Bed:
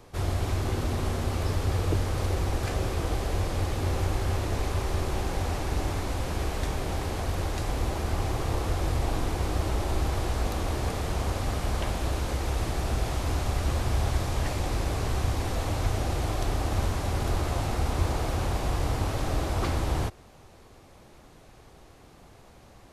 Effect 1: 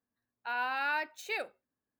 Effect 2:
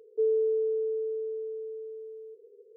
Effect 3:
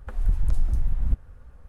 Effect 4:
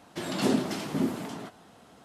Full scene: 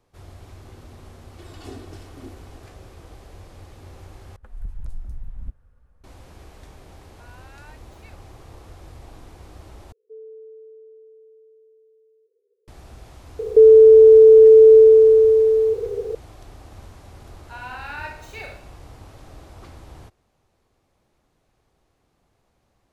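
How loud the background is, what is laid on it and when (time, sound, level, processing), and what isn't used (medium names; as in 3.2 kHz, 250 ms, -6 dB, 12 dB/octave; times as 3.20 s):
bed -15.5 dB
1.22 s: add 4 -17 dB + comb 2.7 ms, depth 99%
4.36 s: replace with 3 -10.5 dB
6.73 s: add 1 -17.5 dB
9.92 s: replace with 2 -15.5 dB
13.39 s: add 2 -3.5 dB + loudness maximiser +30.5 dB
17.04 s: add 1 -4.5 dB + Schroeder reverb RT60 0.63 s, combs from 25 ms, DRR 0 dB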